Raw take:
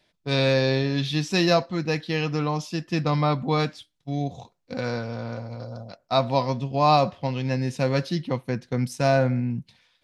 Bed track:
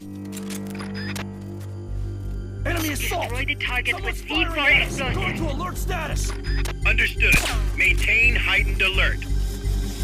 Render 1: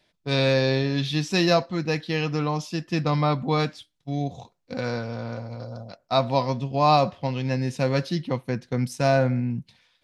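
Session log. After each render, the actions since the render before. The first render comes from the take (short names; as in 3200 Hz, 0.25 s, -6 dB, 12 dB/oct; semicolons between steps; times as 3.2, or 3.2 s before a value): nothing audible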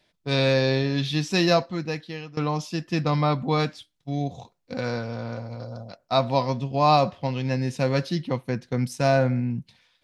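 1.58–2.37 fade out, to -20 dB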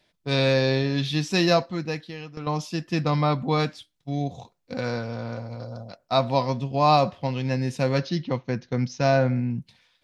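1.99–2.47 compressor, threshold -31 dBFS; 7.98–9.37 steep low-pass 6600 Hz 96 dB/oct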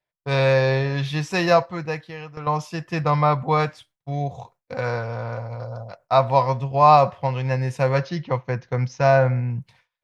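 gate with hold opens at -47 dBFS; ten-band EQ 125 Hz +6 dB, 250 Hz -10 dB, 500 Hz +4 dB, 1000 Hz +7 dB, 2000 Hz +4 dB, 4000 Hz -6 dB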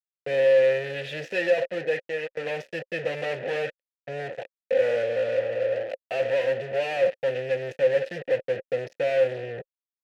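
fuzz box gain 39 dB, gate -36 dBFS; vowel filter e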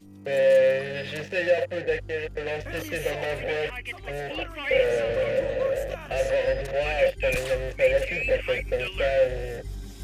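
add bed track -12.5 dB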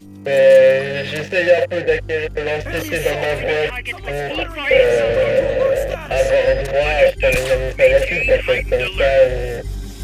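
gain +9.5 dB; limiter -2 dBFS, peak gain reduction 1 dB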